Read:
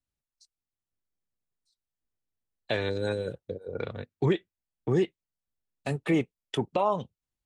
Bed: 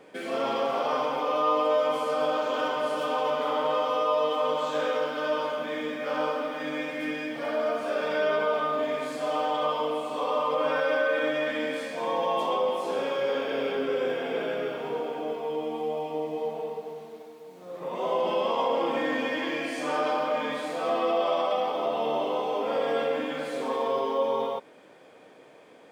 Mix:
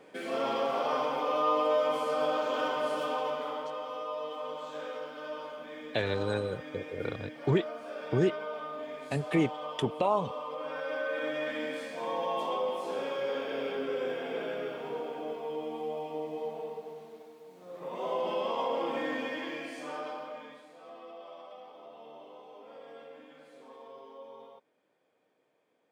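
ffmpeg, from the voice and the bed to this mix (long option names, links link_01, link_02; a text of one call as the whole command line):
ffmpeg -i stem1.wav -i stem2.wav -filter_complex "[0:a]adelay=3250,volume=-1.5dB[link_01];[1:a]volume=3.5dB,afade=type=out:start_time=2.94:duration=0.76:silence=0.354813,afade=type=in:start_time=10.68:duration=0.8:silence=0.473151,afade=type=out:start_time=19.06:duration=1.6:silence=0.149624[link_02];[link_01][link_02]amix=inputs=2:normalize=0" out.wav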